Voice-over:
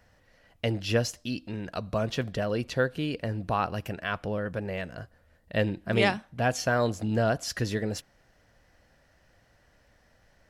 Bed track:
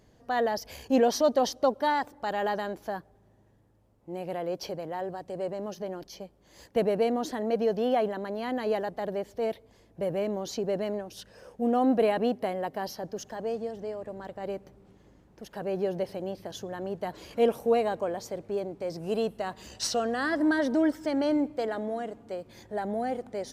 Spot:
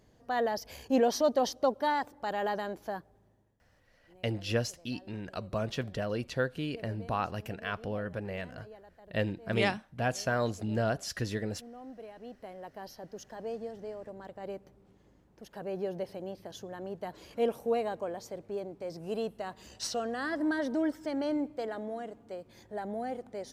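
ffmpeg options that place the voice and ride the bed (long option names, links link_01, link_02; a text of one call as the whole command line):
ffmpeg -i stem1.wav -i stem2.wav -filter_complex "[0:a]adelay=3600,volume=-4.5dB[link_01];[1:a]volume=14.5dB,afade=type=out:start_time=3.18:duration=0.5:silence=0.1,afade=type=in:start_time=12.15:duration=1.42:silence=0.133352[link_02];[link_01][link_02]amix=inputs=2:normalize=0" out.wav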